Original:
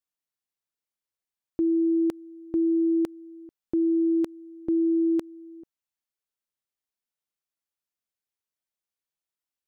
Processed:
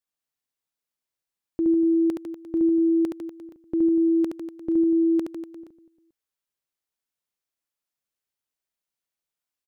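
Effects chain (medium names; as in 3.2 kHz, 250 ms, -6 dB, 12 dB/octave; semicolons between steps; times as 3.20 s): reverse bouncing-ball echo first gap 70 ms, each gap 1.15×, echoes 5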